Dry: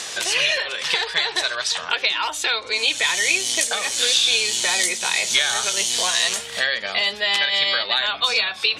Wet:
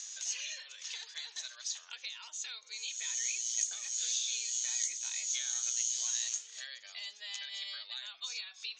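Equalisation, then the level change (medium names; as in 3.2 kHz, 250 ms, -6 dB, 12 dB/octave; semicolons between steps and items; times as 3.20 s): band-pass filter 6.6 kHz, Q 11; distance through air 140 m; +6.5 dB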